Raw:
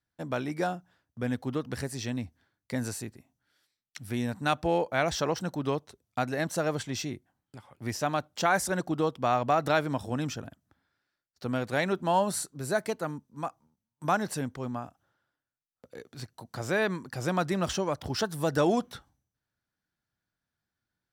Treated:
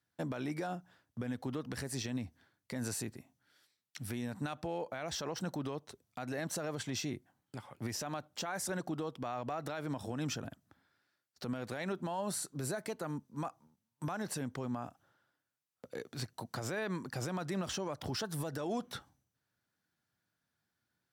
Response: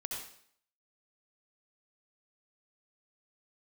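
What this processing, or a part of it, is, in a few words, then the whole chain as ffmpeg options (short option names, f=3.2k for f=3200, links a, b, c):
podcast mastering chain: -af "highpass=93,acompressor=threshold=-35dB:ratio=2.5,alimiter=level_in=7dB:limit=-24dB:level=0:latency=1:release=49,volume=-7dB,volume=3dB" -ar 48000 -c:a libmp3lame -b:a 128k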